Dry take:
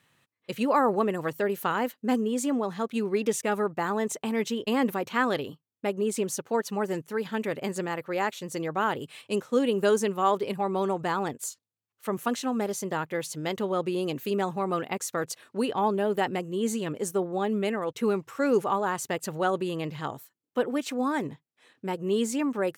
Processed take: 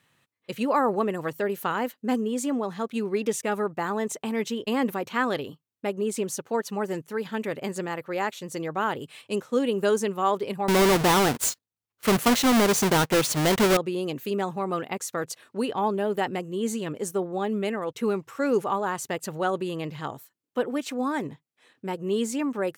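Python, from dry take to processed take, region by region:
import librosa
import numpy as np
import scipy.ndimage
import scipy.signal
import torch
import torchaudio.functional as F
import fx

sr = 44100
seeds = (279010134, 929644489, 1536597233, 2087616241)

y = fx.chain(x, sr, fx.halfwave_hold(),
    fx.leveller(passes=2), at=(10.68, 13.77))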